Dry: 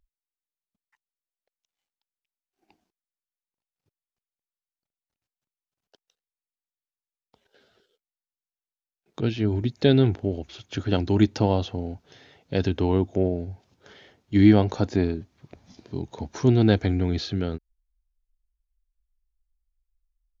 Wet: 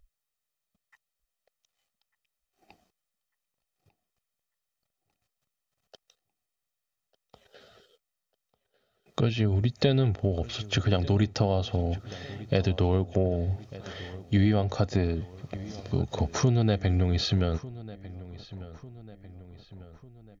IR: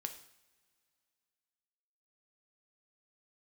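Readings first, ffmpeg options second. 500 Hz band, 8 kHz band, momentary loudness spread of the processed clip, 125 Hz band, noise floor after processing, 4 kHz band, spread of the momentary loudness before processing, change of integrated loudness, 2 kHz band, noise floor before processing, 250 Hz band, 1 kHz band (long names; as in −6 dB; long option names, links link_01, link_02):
−3.5 dB, can't be measured, 18 LU, −0.5 dB, below −85 dBFS, +1.0 dB, 17 LU, −4.0 dB, −2.0 dB, below −85 dBFS, −6.5 dB, −2.5 dB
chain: -filter_complex "[0:a]aecho=1:1:1.6:0.49,acompressor=threshold=-29dB:ratio=4,asplit=2[link_01][link_02];[link_02]adelay=1197,lowpass=frequency=4000:poles=1,volume=-17.5dB,asplit=2[link_03][link_04];[link_04]adelay=1197,lowpass=frequency=4000:poles=1,volume=0.53,asplit=2[link_05][link_06];[link_06]adelay=1197,lowpass=frequency=4000:poles=1,volume=0.53,asplit=2[link_07][link_08];[link_08]adelay=1197,lowpass=frequency=4000:poles=1,volume=0.53,asplit=2[link_09][link_10];[link_10]adelay=1197,lowpass=frequency=4000:poles=1,volume=0.53[link_11];[link_01][link_03][link_05][link_07][link_09][link_11]amix=inputs=6:normalize=0,volume=7dB"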